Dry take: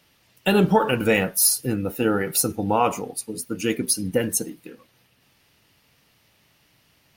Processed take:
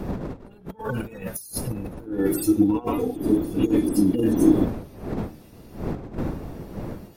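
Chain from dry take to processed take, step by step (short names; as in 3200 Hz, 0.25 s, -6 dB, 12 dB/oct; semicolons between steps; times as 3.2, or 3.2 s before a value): median-filter separation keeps harmonic; wind noise 310 Hz -28 dBFS; high shelf 7000 Hz +9.5 dB; notch 3000 Hz, Q 18; de-hum 76.64 Hz, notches 5; negative-ratio compressor -28 dBFS, ratio -0.5; 2.06–4.65 small resonant body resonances 310/3400 Hz, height 17 dB, ringing for 45 ms; gain -1 dB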